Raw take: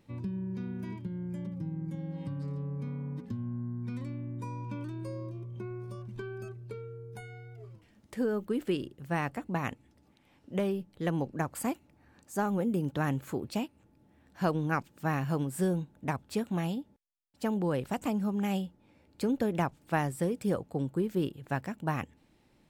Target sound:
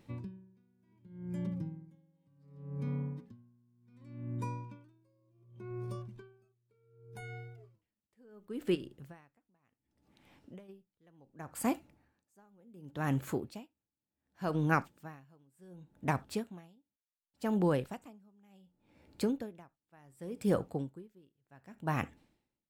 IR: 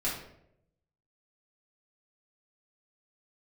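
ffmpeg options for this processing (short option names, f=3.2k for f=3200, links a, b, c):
-filter_complex "[0:a]asplit=3[a][b][c];[a]afade=t=out:st=8.74:d=0.02[d];[b]acompressor=threshold=-39dB:ratio=6,afade=t=in:st=8.74:d=0.02,afade=t=out:st=10.68:d=0.02[e];[c]afade=t=in:st=10.68:d=0.02[f];[d][e][f]amix=inputs=3:normalize=0,asplit=2[g][h];[1:a]atrim=start_sample=2205,atrim=end_sample=3969,lowshelf=f=290:g=-9.5[i];[h][i]afir=irnorm=-1:irlink=0,volume=-20dB[j];[g][j]amix=inputs=2:normalize=0,aeval=exprs='val(0)*pow(10,-36*(0.5-0.5*cos(2*PI*0.68*n/s))/20)':c=same,volume=1.5dB"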